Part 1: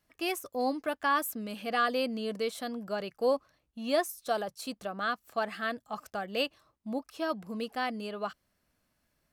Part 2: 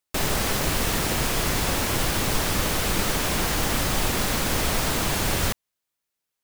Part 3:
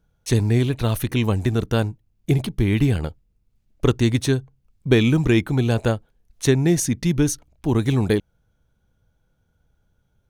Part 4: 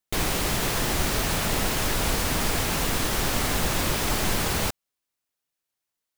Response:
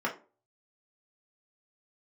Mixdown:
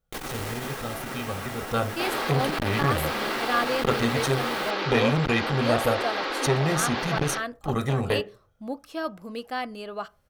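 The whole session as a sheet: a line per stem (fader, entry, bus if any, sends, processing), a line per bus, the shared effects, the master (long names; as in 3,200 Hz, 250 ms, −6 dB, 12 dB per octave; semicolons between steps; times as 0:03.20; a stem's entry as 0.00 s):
+1.0 dB, 1.75 s, send −21.5 dB, no processing
−5.0 dB, 1.85 s, send −8.5 dB, elliptic band-pass filter 320–4,500 Hz
0:01.58 −15 dB → 0:01.79 −6 dB, 0.00 s, send −7.5 dB, comb filter 1.6 ms, depth 73%
−7.5 dB, 0.00 s, send −9.5 dB, automatic ducking −10 dB, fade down 1.05 s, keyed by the third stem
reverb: on, RT60 0.35 s, pre-delay 3 ms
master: saturating transformer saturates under 670 Hz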